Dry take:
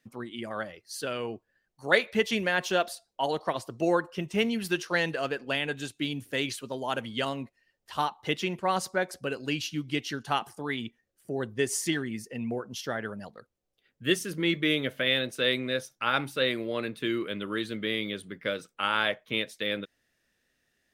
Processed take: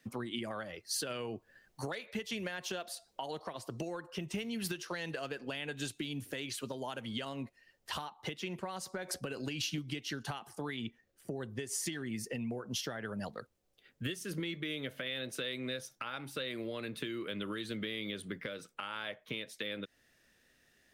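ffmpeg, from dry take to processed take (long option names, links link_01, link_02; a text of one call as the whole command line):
ffmpeg -i in.wav -filter_complex "[0:a]asplit=3[link_01][link_02][link_03];[link_01]afade=type=out:start_time=1.09:duration=0.02[link_04];[link_02]acontrast=37,afade=type=in:start_time=1.09:duration=0.02,afade=type=out:start_time=5.18:duration=0.02[link_05];[link_03]afade=type=in:start_time=5.18:duration=0.02[link_06];[link_04][link_05][link_06]amix=inputs=3:normalize=0,asettb=1/sr,asplit=3[link_07][link_08][link_09];[link_07]atrim=end=8.834[link_10];[link_08]atrim=start=8.83:end=9.78,asetpts=PTS-STARTPTS,afade=type=in:duration=0.004:curve=qsin,afade=type=out:start_time=0.946:duration=0.004:curve=qsin,acompressor=threshold=-32dB:ratio=6:attack=3.2:release=140:knee=1:detection=peak[link_11];[link_09]atrim=start=9.776[link_12];[link_10][link_11]acrossfade=duration=0.004:curve1=hsin:curve2=qsin[link_13];[link_13][link_12]acrossfade=duration=0.004:curve1=qsin:curve2=hsin,asettb=1/sr,asplit=3[link_14][link_15][link_16];[link_14]atrim=end=10.774[link_17];[link_15]atrim=start=10.77:end=11.36,asetpts=PTS-STARTPTS,afade=type=in:duration=0.004:curve=qsin,afade=type=out:start_time=0.586:duration=0.004:curve=qsin,equalizer=frequency=12000:width=0.44:gain=-5[link_18];[link_16]atrim=start=11.356[link_19];[link_17][link_18]acrossfade=duration=0.004:curve1=hsin:curve2=qsin[link_20];[link_20][link_19]acrossfade=duration=0.004:curve1=qsin:curve2=hsin,acompressor=threshold=-35dB:ratio=6,alimiter=level_in=5dB:limit=-24dB:level=0:latency=1:release=494,volume=-5dB,acrossover=split=140|3000[link_21][link_22][link_23];[link_22]acompressor=threshold=-42dB:ratio=6[link_24];[link_21][link_24][link_23]amix=inputs=3:normalize=0,volume=5.5dB" out.wav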